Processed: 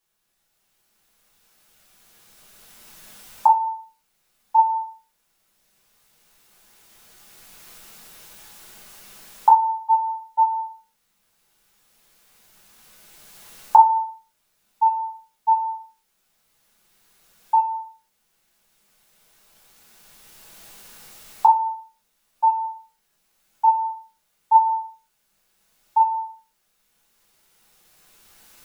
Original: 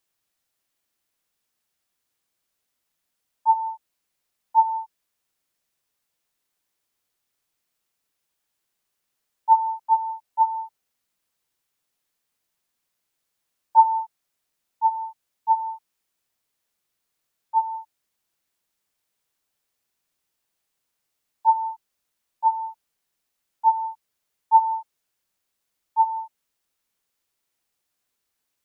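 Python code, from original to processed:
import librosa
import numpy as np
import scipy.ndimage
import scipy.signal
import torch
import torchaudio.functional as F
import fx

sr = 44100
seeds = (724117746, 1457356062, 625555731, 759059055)

y = fx.recorder_agc(x, sr, target_db=-12.5, rise_db_per_s=9.8, max_gain_db=30)
y = fx.room_shoebox(y, sr, seeds[0], volume_m3=30.0, walls='mixed', distance_m=0.73)
y = y * 10.0 ** (-1.0 / 20.0)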